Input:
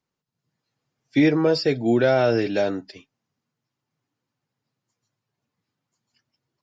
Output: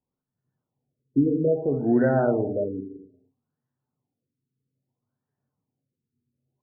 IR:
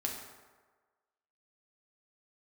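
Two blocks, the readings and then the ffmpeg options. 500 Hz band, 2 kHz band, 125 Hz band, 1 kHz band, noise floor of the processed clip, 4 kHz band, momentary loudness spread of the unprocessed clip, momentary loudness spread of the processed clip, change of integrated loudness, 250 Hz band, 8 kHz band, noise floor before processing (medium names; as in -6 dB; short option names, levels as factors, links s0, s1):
-3.0 dB, -9.0 dB, -1.0 dB, -3.5 dB, under -85 dBFS, under -40 dB, 8 LU, 11 LU, -3.0 dB, -2.0 dB, no reading, -84 dBFS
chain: -filter_complex "[0:a]acrusher=bits=8:mode=log:mix=0:aa=0.000001,equalizer=f=1200:t=o:w=0.36:g=-4.5,asplit=2[s0][s1];[1:a]atrim=start_sample=2205,afade=t=out:st=0.38:d=0.01,atrim=end_sample=17199,lowshelf=f=210:g=8[s2];[s1][s2]afir=irnorm=-1:irlink=0,volume=0.794[s3];[s0][s3]amix=inputs=2:normalize=0,afftfilt=real='re*lt(b*sr/1024,470*pow(2000/470,0.5+0.5*sin(2*PI*0.61*pts/sr)))':imag='im*lt(b*sr/1024,470*pow(2000/470,0.5+0.5*sin(2*PI*0.61*pts/sr)))':win_size=1024:overlap=0.75,volume=0.355"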